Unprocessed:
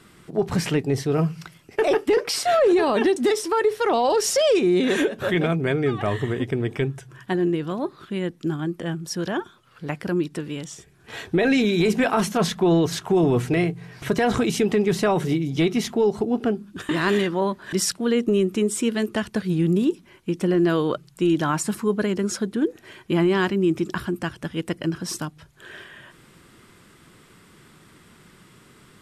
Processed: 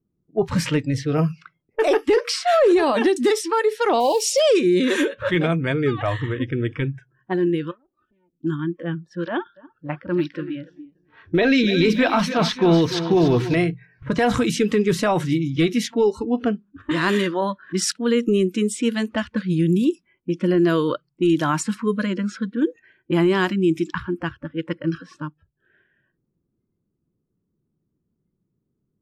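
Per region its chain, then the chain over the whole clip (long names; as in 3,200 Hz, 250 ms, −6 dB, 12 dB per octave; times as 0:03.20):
0:04.00–0:04.40: one scale factor per block 5 bits + Butterworth band-reject 1,500 Hz, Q 1.2
0:07.71–0:08.33: lower of the sound and its delayed copy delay 3.3 ms + high-pass filter 61 Hz 6 dB per octave + downward compressor 4 to 1, threshold −43 dBFS
0:09.25–0:13.55: high shelf with overshoot 6,500 Hz −10.5 dB, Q 1.5 + notch filter 6,900 Hz, Q 22 + feedback echo at a low word length 290 ms, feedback 55%, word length 8 bits, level −10.5 dB
whole clip: noise reduction from a noise print of the clip's start 22 dB; low-pass that shuts in the quiet parts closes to 330 Hz, open at −18.5 dBFS; level +2 dB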